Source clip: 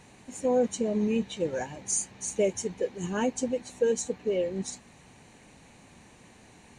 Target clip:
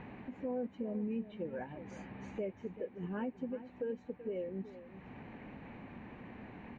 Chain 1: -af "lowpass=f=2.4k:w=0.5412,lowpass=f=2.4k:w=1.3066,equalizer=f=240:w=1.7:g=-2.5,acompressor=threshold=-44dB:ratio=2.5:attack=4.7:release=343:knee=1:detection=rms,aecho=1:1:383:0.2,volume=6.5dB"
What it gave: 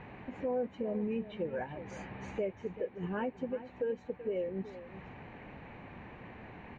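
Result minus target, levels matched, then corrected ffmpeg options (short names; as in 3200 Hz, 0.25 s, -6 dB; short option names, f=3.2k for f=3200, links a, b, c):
compressor: peak gain reduction -6 dB; 250 Hz band -3.5 dB
-af "lowpass=f=2.4k:w=0.5412,lowpass=f=2.4k:w=1.3066,equalizer=f=240:w=1.7:g=5,acompressor=threshold=-52dB:ratio=2.5:attack=4.7:release=343:knee=1:detection=rms,aecho=1:1:383:0.2,volume=6.5dB"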